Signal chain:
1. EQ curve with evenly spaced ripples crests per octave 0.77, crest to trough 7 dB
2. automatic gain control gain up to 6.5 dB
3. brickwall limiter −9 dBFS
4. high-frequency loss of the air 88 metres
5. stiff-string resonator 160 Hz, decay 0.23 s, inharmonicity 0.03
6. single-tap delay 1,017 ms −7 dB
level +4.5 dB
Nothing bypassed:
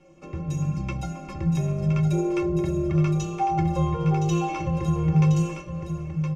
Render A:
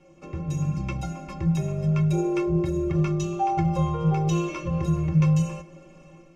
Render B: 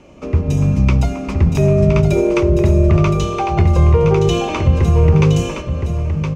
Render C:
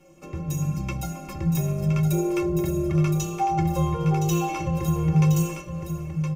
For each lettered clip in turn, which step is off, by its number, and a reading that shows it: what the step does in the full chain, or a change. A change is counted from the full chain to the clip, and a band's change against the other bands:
6, change in momentary loudness spread −1 LU
5, 1 kHz band −6.0 dB
4, 4 kHz band +2.0 dB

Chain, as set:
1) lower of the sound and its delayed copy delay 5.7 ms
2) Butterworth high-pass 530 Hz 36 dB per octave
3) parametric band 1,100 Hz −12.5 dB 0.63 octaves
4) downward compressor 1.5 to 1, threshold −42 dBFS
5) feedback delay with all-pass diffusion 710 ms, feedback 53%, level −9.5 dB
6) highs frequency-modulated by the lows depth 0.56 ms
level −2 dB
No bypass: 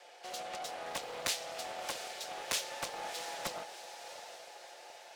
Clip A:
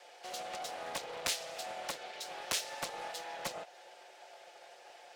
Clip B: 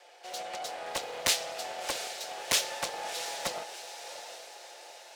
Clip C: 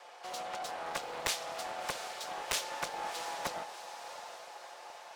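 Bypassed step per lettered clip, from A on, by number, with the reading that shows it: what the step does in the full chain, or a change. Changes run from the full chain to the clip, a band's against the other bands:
5, change in momentary loudness spread +5 LU
4, average gain reduction 2.5 dB
3, 1 kHz band +2.5 dB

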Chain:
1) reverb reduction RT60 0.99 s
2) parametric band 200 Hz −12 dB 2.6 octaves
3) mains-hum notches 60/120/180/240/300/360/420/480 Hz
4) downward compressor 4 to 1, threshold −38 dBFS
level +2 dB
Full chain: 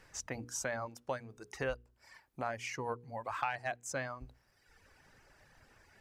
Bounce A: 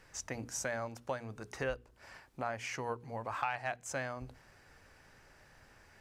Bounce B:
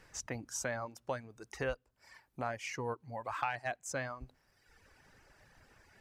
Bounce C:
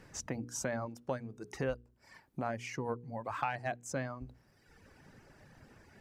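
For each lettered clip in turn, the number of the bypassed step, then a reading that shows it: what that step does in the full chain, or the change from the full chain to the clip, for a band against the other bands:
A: 1, change in momentary loudness spread −3 LU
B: 3, change in momentary loudness spread −1 LU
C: 2, 250 Hz band +7.0 dB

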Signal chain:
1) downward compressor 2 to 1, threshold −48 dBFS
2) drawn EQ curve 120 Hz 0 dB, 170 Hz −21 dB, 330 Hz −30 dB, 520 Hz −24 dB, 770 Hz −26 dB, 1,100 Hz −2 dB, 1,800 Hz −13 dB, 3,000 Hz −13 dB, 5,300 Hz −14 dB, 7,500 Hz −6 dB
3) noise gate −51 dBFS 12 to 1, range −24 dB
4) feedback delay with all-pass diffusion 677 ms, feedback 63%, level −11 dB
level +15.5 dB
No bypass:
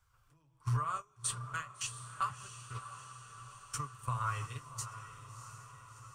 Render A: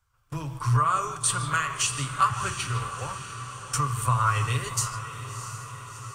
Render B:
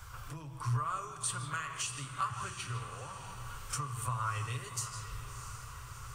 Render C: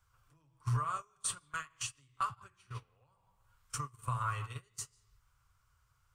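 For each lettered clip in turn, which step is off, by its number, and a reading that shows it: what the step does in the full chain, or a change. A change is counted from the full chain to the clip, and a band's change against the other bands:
1, average gain reduction 7.5 dB
3, change in momentary loudness spread −4 LU
4, echo-to-direct ratio −9.0 dB to none audible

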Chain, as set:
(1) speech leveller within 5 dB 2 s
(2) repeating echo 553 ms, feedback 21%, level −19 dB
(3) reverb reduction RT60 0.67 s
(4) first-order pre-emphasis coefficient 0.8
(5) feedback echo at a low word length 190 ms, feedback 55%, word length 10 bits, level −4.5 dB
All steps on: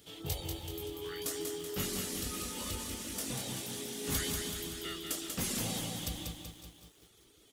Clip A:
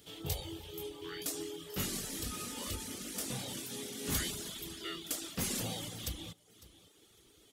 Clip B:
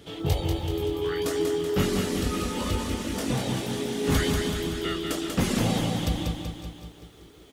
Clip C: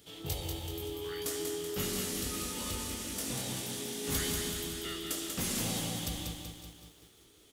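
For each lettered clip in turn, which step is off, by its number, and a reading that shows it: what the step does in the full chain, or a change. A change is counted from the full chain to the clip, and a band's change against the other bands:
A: 5, change in crest factor +1.5 dB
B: 4, 8 kHz band −12.5 dB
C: 3, change in crest factor −2.0 dB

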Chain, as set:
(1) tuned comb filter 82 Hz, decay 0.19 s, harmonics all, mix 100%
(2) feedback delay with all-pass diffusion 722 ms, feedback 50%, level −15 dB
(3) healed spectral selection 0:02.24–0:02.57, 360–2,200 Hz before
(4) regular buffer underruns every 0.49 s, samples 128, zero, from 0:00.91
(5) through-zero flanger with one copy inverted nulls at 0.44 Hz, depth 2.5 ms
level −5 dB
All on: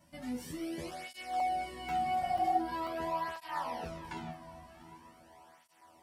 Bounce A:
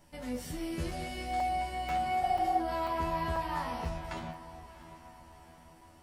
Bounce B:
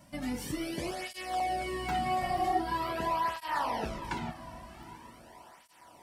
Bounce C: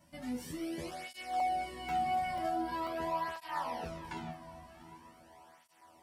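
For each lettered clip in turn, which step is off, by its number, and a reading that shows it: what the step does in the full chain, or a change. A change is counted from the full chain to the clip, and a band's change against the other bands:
5, 125 Hz band +6.5 dB
1, 1 kHz band −4.0 dB
3, change in crest factor −4.5 dB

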